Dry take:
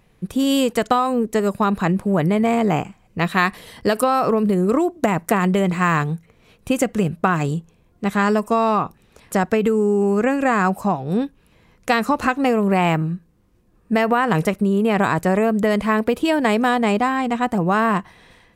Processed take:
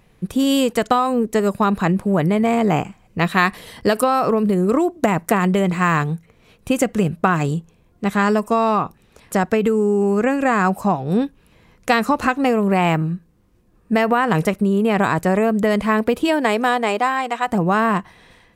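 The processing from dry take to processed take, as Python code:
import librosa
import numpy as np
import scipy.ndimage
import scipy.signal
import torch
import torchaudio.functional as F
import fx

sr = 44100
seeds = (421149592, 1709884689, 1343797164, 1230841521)

p1 = fx.highpass(x, sr, hz=fx.line((16.27, 210.0), (17.47, 650.0)), slope=12, at=(16.27, 17.47), fade=0.02)
p2 = fx.rider(p1, sr, range_db=4, speed_s=0.5)
p3 = p1 + (p2 * 10.0 ** (-2.0 / 20.0))
y = p3 * 10.0 ** (-4.0 / 20.0)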